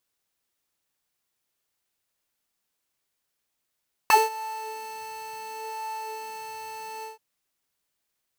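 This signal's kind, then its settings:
subtractive patch with filter wobble A5, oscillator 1 square, oscillator 2 square, interval +12 semitones, oscillator 2 level −15.5 dB, sub −9 dB, noise −9.5 dB, filter highpass, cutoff 190 Hz, Q 2.7, filter envelope 3.5 octaves, filter decay 0.07 s, filter sustain 10%, attack 1.6 ms, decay 0.19 s, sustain −20.5 dB, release 0.15 s, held 2.93 s, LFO 0.7 Hz, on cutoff 1.5 octaves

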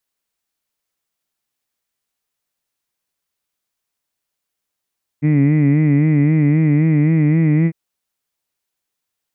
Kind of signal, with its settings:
vowel from formants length 2.50 s, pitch 145 Hz, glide +1.5 semitones, vibrato 3.8 Hz, F1 250 Hz, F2 2,000 Hz, F3 2,400 Hz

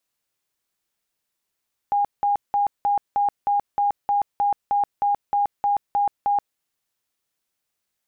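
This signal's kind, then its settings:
tone bursts 814 Hz, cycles 104, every 0.31 s, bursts 15, −17 dBFS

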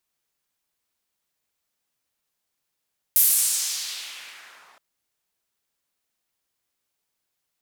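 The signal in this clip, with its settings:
filter sweep on noise white, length 1.62 s bandpass, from 14,000 Hz, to 1,000 Hz, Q 1.5, exponential, gain ramp −32 dB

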